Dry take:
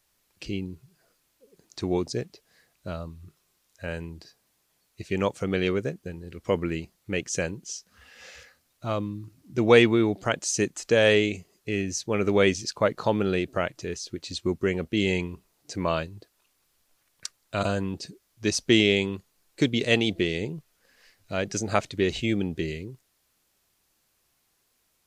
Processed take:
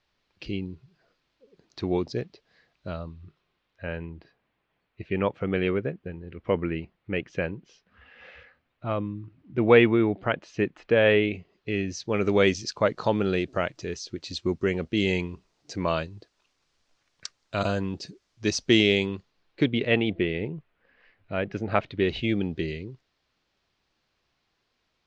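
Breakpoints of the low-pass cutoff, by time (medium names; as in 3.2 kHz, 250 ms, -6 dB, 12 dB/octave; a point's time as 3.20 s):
low-pass 24 dB/octave
2.88 s 4.5 kHz
4.08 s 2.9 kHz
11.18 s 2.9 kHz
12.27 s 6.2 kHz
18.98 s 6.2 kHz
19.92 s 2.8 kHz
21.60 s 2.8 kHz
22.38 s 4.7 kHz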